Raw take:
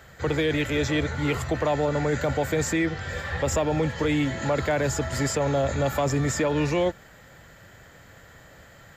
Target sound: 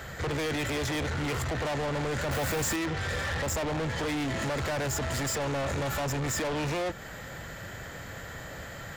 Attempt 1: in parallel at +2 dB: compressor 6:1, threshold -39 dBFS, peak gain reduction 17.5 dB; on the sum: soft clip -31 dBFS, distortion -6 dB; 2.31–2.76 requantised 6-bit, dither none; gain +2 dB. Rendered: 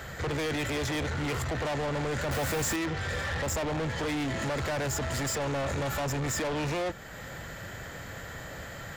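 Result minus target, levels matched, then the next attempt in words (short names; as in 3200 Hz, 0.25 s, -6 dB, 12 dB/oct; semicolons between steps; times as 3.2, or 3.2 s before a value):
compressor: peak gain reduction +7 dB
in parallel at +2 dB: compressor 6:1, threshold -30.5 dBFS, peak gain reduction 10.5 dB; on the sum: soft clip -31 dBFS, distortion -5 dB; 2.31–2.76 requantised 6-bit, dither none; gain +2 dB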